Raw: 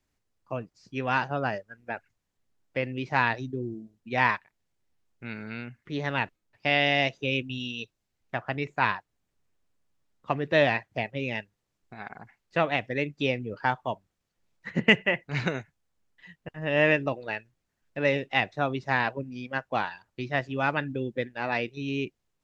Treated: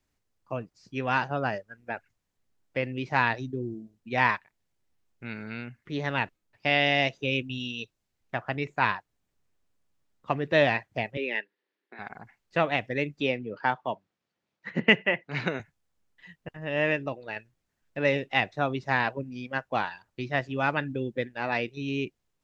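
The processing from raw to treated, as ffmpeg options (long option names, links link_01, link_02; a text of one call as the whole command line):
ffmpeg -i in.wav -filter_complex "[0:a]asettb=1/sr,asplit=3[link_01][link_02][link_03];[link_01]atrim=end=11.174[link_04];[link_02]atrim=start=11.17:end=11.99,asetpts=PTS-STARTPTS,afade=type=in:duration=0.004:curve=qsin,afade=type=out:start_time=0.816:duration=0.004:curve=qsin,highpass=frequency=280:width=0.5412,highpass=frequency=280:width=1.3066,equalizer=frequency=400:width_type=q:width=4:gain=5,equalizer=frequency=710:width_type=q:width=4:gain=-7,equalizer=frequency=1200:width_type=q:width=4:gain=-4,equalizer=frequency=1800:width_type=q:width=4:gain=8,lowpass=frequency=4200:width=0.5412,lowpass=frequency=4200:width=1.3066[link_05];[link_03]atrim=start=11.986[link_06];[link_04][link_05]acrossfade=duration=0.004:curve1=hsin:curve2=qsin[link_07];[link_07][link_06]acrossfade=duration=0.004:curve1=qsin:curve2=hsin,asettb=1/sr,asplit=3[link_08][link_09][link_10];[link_08]atrim=end=13.204[link_11];[link_09]atrim=start=13.2:end=15.6,asetpts=PTS-STARTPTS,afade=type=in:duration=0.004:curve=qsin,afade=type=out:start_time=2.396:duration=0.004:curve=qsin,highpass=160,lowpass=4700[link_12];[link_10]atrim=start=15.596[link_13];[link_11][link_12]acrossfade=duration=0.004:curve1=hsin:curve2=qsin[link_14];[link_14][link_13]acrossfade=duration=0.004:curve1=qsin:curve2=hsin,asplit=3[link_15][link_16][link_17];[link_15]atrim=end=16.572[link_18];[link_16]atrim=start=16.568:end=17.362,asetpts=PTS-STARTPTS,volume=-4dB[link_19];[link_17]atrim=start=17.358[link_20];[link_18][link_19]acrossfade=duration=0.004:curve1=hsin:curve2=hsin[link_21];[link_21][link_20]acrossfade=duration=0.004:curve1=hsin:curve2=hsin" out.wav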